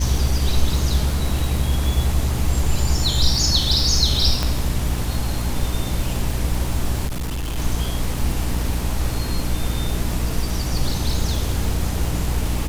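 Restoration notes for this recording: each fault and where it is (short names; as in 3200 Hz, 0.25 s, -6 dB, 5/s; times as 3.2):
crackle 430/s -28 dBFS
hum 60 Hz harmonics 5 -25 dBFS
4.43 pop -7 dBFS
7.06–7.58 clipped -22 dBFS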